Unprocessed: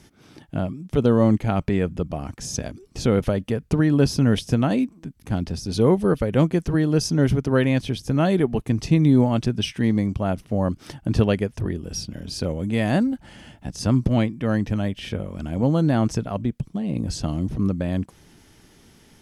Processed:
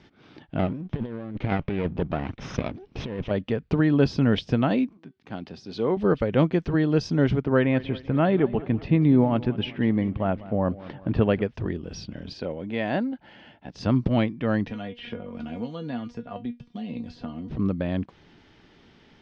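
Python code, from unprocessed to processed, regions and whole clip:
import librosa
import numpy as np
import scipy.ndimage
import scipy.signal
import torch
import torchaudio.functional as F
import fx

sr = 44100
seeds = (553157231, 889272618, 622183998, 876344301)

y = fx.chain(x, sr, fx.lower_of_two(delay_ms=0.34),
    fx.over_compress(threshold_db=-23.0, ratio=-0.5),
    fx.air_absorb(metres=86.0), at=(0.59, 3.31))
y = fx.chain(y, sr, fx.highpass(hz=130.0, slope=12),
    fx.low_shelf(hz=240.0, db=-5.0),
    fx.comb_fb(f0_hz=380.0, decay_s=0.26, harmonics='all', damping=0.0, mix_pct=40), at=(4.97, 5.97))
y = fx.chain(y, sr, fx.lowpass(hz=2500.0, slope=12),
    fx.echo_feedback(ms=194, feedback_pct=52, wet_db=-18.0), at=(7.44, 11.42))
y = fx.chain(y, sr, fx.highpass(hz=620.0, slope=6),
    fx.tilt_eq(slope=-2.0),
    fx.notch(hz=1200.0, q=8.4), at=(12.33, 13.76))
y = fx.chain(y, sr, fx.comb_fb(f0_hz=240.0, decay_s=0.15, harmonics='all', damping=0.0, mix_pct=90),
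    fx.band_squash(depth_pct=100), at=(14.68, 17.5))
y = scipy.signal.sosfilt(scipy.signal.butter(4, 4100.0, 'lowpass', fs=sr, output='sos'), y)
y = fx.low_shelf(y, sr, hz=160.0, db=-6.5)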